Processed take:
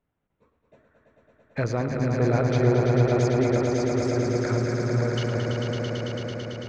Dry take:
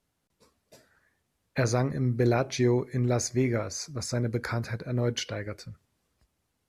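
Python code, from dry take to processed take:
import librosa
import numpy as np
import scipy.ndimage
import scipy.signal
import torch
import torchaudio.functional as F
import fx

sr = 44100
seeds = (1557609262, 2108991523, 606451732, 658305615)

y = fx.wiener(x, sr, points=9)
y = fx.air_absorb(y, sr, metres=130.0)
y = fx.echo_swell(y, sr, ms=111, loudest=5, wet_db=-5.0)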